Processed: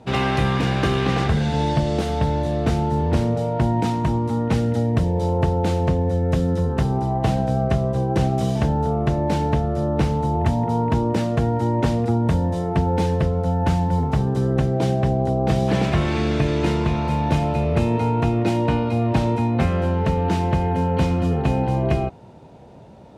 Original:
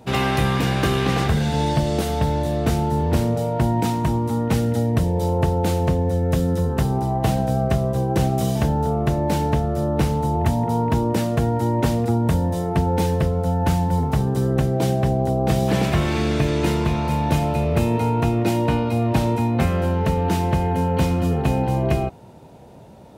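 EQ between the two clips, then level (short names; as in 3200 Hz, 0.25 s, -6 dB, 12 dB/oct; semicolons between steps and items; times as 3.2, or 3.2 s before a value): air absorption 64 m; 0.0 dB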